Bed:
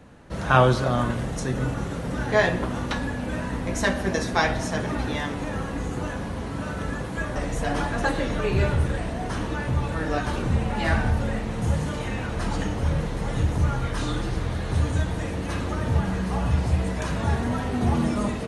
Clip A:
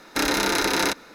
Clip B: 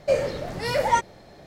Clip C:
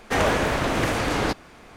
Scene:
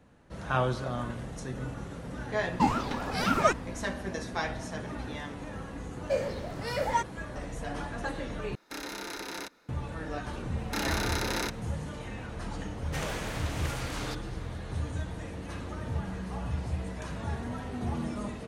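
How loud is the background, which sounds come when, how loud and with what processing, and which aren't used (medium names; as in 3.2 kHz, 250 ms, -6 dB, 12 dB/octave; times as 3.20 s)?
bed -10.5 dB
2.52 s: add B -0.5 dB + ring modulator with a swept carrier 550 Hz, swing 50%, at 3.8 Hz
6.02 s: add B -7.5 dB
8.55 s: replace with A -16.5 dB
10.57 s: add A -10 dB
12.82 s: add C -17 dB + treble shelf 2.5 kHz +10.5 dB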